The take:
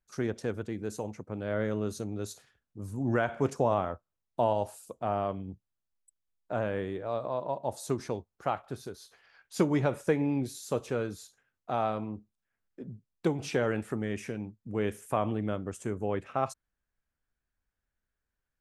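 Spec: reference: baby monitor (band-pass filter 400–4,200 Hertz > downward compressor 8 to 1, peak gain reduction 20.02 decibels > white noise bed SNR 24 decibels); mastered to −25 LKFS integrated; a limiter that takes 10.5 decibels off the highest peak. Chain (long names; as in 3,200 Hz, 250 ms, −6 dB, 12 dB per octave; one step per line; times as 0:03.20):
brickwall limiter −23 dBFS
band-pass filter 400–4,200 Hz
downward compressor 8 to 1, threshold −50 dBFS
white noise bed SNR 24 dB
level +30 dB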